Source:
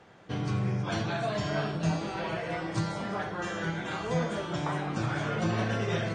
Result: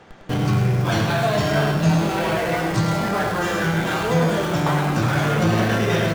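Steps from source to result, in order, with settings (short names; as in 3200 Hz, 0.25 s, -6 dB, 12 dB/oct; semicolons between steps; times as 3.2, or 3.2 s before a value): in parallel at -8.5 dB: Schmitt trigger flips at -44 dBFS; on the sum: echo 0.103 s -7 dB; gain +8 dB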